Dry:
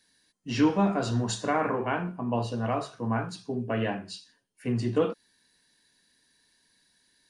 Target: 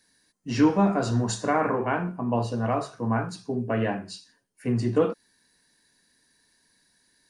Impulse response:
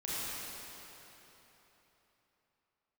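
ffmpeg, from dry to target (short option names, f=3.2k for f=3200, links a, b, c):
-af "equalizer=f=3.2k:w=1.9:g=-7,volume=3dB"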